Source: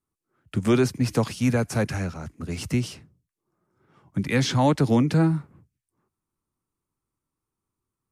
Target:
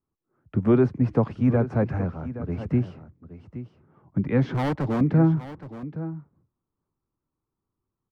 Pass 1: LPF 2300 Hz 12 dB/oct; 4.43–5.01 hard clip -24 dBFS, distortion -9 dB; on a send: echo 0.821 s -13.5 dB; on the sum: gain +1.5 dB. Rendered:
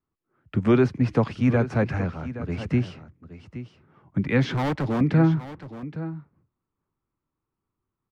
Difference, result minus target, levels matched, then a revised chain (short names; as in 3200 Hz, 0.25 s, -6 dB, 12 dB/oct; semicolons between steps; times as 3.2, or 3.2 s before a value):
2000 Hz band +6.0 dB
LPF 1100 Hz 12 dB/oct; 4.43–5.01 hard clip -24 dBFS, distortion -10 dB; on a send: echo 0.821 s -13.5 dB; on the sum: gain +1.5 dB